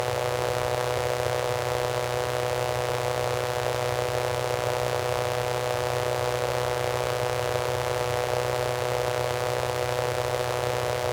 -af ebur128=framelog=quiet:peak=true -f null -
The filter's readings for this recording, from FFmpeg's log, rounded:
Integrated loudness:
  I:         -26.9 LUFS
  Threshold: -36.9 LUFS
Loudness range:
  LRA:         0.2 LU
  Threshold: -46.9 LUFS
  LRA low:   -27.0 LUFS
  LRA high:  -26.8 LUFS
True peak:
  Peak:       -9.5 dBFS